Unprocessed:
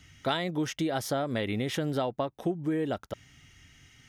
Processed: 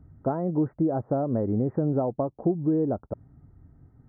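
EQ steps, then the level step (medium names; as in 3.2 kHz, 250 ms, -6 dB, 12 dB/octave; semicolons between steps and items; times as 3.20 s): Gaussian low-pass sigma 10 samples; +6.5 dB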